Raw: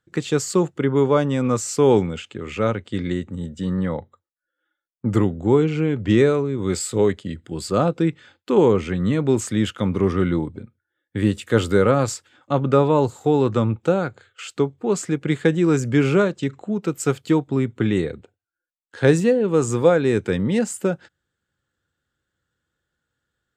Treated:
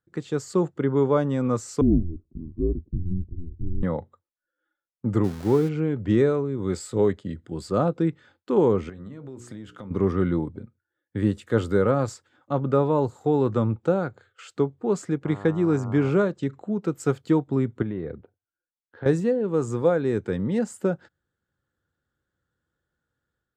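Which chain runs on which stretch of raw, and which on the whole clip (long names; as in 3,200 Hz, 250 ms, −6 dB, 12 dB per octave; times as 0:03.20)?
0:01.81–0:03.83: Chebyshev low-pass filter 560 Hz, order 4 + frequency shifter −170 Hz
0:05.24–0:05.69: spike at every zero crossing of −11.5 dBFS + high-shelf EQ 5,000 Hz −12 dB
0:08.89–0:09.91: mains-hum notches 60/120/180/240/300/360/420/480 Hz + downward compressor 10 to 1, threshold −30 dBFS + tuned comb filter 64 Hz, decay 0.18 s, mix 40%
0:15.24–0:16.09: high-shelf EQ 6,700 Hz −6 dB + hum with harmonics 100 Hz, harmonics 14, −35 dBFS −2 dB per octave
0:17.82–0:19.06: high-frequency loss of the air 350 metres + downward compressor 4 to 1, threshold −24 dBFS
whole clip: parametric band 2,600 Hz −6.5 dB 0.9 octaves; automatic gain control gain up to 6 dB; high-shelf EQ 4,800 Hz −11 dB; level −7 dB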